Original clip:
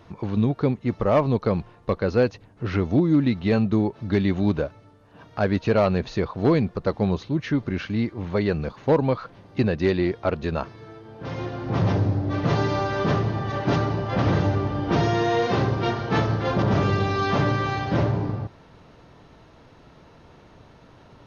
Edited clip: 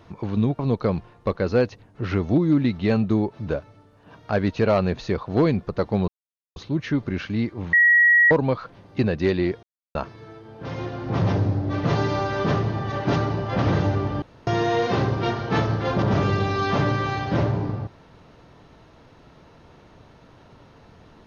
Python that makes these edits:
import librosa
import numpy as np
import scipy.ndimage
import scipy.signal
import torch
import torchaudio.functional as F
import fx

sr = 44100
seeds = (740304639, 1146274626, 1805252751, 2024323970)

y = fx.edit(x, sr, fx.cut(start_s=0.59, length_s=0.62),
    fx.cut(start_s=4.09, length_s=0.46),
    fx.insert_silence(at_s=7.16, length_s=0.48),
    fx.bleep(start_s=8.33, length_s=0.58, hz=1910.0, db=-12.0),
    fx.silence(start_s=10.23, length_s=0.32),
    fx.room_tone_fill(start_s=14.82, length_s=0.25), tone=tone)